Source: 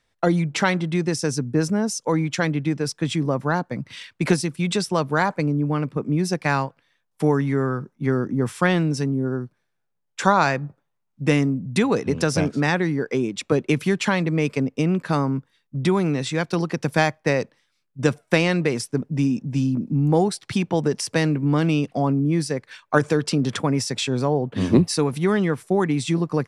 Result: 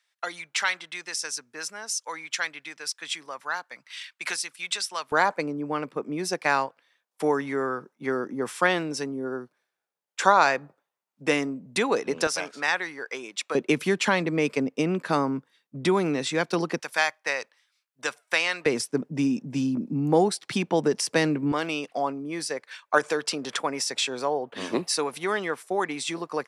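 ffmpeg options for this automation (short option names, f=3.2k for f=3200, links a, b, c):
-af "asetnsamples=n=441:p=0,asendcmd='5.12 highpass f 420;12.27 highpass f 890;13.55 highpass f 270;16.8 highpass f 1000;18.66 highpass f 250;21.52 highpass f 560',highpass=1.4k"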